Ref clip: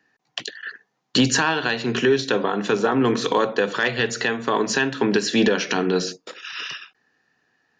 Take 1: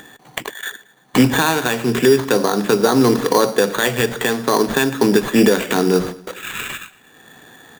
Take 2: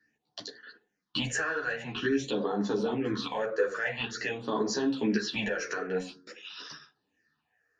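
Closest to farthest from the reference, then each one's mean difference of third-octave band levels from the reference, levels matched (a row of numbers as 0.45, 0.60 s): 2, 1; 4.5, 8.5 dB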